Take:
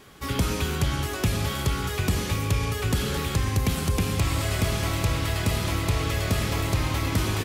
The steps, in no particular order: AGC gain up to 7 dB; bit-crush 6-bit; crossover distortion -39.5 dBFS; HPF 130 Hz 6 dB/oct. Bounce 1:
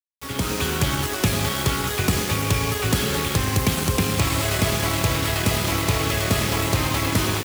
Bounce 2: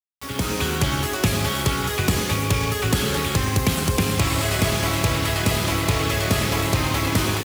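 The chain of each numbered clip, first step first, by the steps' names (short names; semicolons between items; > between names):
crossover distortion > HPF > bit-crush > AGC; AGC > crossover distortion > bit-crush > HPF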